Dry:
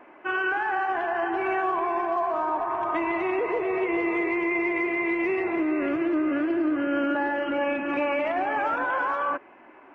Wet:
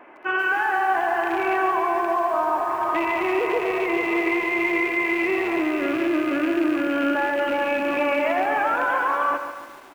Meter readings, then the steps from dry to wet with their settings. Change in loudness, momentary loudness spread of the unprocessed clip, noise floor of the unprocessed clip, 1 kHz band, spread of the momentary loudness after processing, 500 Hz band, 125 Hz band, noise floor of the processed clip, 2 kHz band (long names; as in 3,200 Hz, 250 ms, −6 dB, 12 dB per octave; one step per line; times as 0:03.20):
+3.5 dB, 2 LU, −51 dBFS, +4.0 dB, 2 LU, +3.0 dB, +1.5 dB, −41 dBFS, +5.0 dB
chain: loose part that buzzes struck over −38 dBFS, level −28 dBFS
low-shelf EQ 340 Hz −5 dB
repeating echo 86 ms, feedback 26%, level −12.5 dB
feedback echo at a low word length 142 ms, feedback 55%, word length 8 bits, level −8.5 dB
level +4 dB